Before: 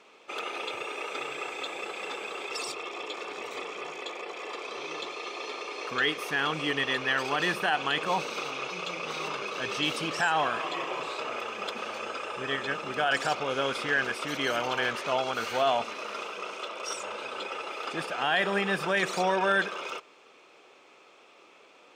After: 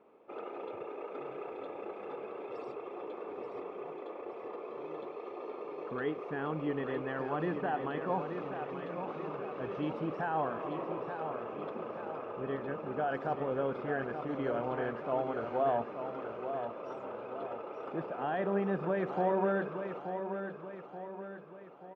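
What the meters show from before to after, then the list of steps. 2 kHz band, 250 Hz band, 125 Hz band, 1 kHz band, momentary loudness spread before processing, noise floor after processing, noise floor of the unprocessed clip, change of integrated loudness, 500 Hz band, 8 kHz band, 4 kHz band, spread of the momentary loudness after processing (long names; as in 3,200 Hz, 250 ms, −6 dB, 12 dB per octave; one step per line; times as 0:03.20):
−15.0 dB, 0.0 dB, +0.5 dB, −6.0 dB, 10 LU, −47 dBFS, −56 dBFS, −6.5 dB, −1.5 dB, below −35 dB, −25.5 dB, 11 LU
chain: Bessel low-pass filter 580 Hz, order 2
repeating echo 880 ms, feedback 49%, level −8 dB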